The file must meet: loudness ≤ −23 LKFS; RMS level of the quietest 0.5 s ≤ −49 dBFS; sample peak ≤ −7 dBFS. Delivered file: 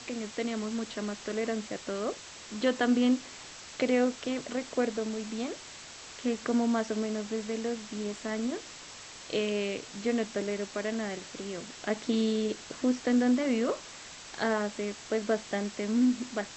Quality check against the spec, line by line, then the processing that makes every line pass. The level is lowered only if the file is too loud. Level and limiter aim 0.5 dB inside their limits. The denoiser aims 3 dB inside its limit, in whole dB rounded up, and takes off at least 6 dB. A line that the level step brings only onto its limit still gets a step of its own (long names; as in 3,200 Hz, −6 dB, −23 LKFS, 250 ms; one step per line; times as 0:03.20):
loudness −31.5 LKFS: in spec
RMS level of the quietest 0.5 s −47 dBFS: out of spec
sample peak −14.5 dBFS: in spec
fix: broadband denoise 6 dB, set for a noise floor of −47 dBFS